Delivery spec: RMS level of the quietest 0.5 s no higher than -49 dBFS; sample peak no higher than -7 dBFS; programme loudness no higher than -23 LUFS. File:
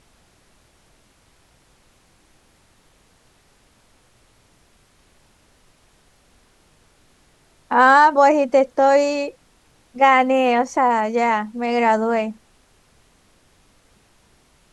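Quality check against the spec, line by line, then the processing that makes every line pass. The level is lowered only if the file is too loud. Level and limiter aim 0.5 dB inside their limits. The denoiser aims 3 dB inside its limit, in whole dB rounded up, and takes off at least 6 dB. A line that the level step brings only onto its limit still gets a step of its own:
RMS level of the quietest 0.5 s -57 dBFS: OK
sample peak -3.0 dBFS: fail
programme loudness -17.0 LUFS: fail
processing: gain -6.5 dB

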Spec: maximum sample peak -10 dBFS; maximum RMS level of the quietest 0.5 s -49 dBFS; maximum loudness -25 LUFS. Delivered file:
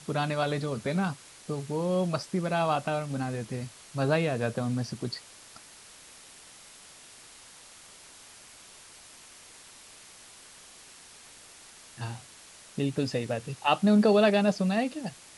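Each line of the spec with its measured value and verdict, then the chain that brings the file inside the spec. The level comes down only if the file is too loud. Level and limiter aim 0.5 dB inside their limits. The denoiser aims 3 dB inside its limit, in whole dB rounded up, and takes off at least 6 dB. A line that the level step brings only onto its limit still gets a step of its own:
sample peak -11.0 dBFS: OK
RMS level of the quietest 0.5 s -51 dBFS: OK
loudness -28.5 LUFS: OK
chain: none

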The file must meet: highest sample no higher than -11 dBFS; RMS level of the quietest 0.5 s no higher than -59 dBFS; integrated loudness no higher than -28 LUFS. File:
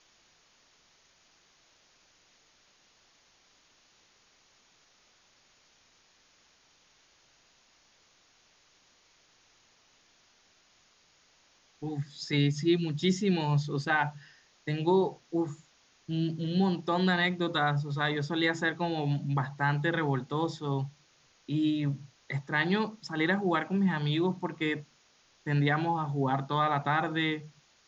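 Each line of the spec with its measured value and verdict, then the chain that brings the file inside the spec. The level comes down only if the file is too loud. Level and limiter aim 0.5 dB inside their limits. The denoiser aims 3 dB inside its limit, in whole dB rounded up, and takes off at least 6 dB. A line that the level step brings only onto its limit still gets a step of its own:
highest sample -13.0 dBFS: OK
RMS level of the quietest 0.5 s -65 dBFS: OK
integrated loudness -30.0 LUFS: OK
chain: none

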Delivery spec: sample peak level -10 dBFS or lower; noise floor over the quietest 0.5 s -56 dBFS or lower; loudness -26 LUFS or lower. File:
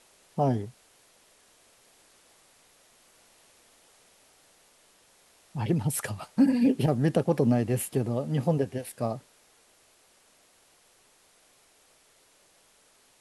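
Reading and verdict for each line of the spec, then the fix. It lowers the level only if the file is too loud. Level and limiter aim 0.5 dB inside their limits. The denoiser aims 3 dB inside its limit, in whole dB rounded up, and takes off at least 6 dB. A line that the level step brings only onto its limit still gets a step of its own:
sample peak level -11.0 dBFS: OK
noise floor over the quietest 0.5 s -62 dBFS: OK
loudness -27.5 LUFS: OK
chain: none

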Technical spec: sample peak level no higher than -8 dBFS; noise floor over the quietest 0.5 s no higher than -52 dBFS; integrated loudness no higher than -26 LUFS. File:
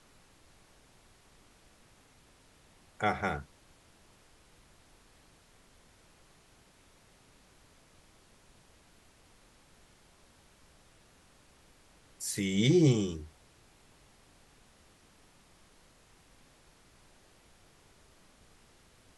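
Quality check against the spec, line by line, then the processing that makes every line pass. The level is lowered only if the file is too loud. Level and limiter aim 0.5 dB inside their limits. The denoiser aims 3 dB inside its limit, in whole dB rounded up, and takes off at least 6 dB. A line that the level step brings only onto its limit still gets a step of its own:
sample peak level -13.5 dBFS: OK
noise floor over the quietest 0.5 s -62 dBFS: OK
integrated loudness -30.0 LUFS: OK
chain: none

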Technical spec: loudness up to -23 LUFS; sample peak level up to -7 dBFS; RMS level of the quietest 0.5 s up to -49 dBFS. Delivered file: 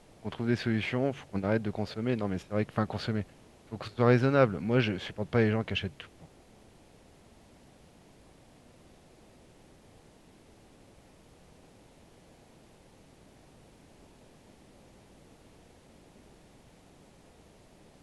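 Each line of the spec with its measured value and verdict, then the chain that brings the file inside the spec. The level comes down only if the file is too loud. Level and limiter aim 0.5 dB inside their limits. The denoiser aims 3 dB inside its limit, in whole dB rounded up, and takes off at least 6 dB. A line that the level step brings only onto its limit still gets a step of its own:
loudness -30.0 LUFS: OK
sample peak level -9.0 dBFS: OK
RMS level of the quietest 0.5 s -58 dBFS: OK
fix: none

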